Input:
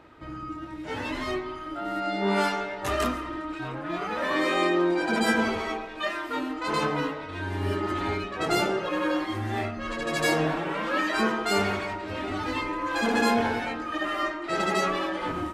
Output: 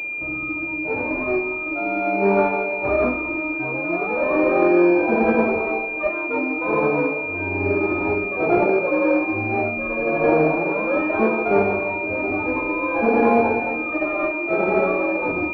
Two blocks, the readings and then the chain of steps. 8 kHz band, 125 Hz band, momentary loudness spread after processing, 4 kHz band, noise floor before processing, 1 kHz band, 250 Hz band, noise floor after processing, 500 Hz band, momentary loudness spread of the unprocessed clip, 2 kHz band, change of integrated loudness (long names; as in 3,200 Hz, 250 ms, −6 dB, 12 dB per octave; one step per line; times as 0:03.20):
below −20 dB, +2.5 dB, 7 LU, below −15 dB, −38 dBFS, +4.0 dB, +7.0 dB, −27 dBFS, +10.0 dB, 9 LU, +6.5 dB, +7.0 dB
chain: parametric band 520 Hz +11 dB 2.2 octaves
switching amplifier with a slow clock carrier 2,400 Hz